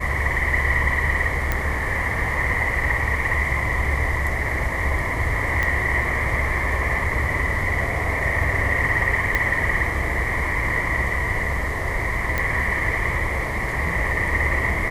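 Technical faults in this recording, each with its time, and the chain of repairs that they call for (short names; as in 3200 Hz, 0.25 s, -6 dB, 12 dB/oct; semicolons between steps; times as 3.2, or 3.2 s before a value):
1.52 pop -8 dBFS
5.63 pop -9 dBFS
9.35 pop -7 dBFS
12.38 pop -9 dBFS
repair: de-click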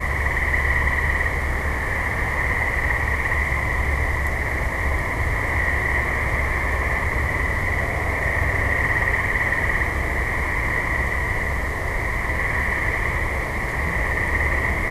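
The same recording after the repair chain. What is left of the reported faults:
5.63 pop
9.35 pop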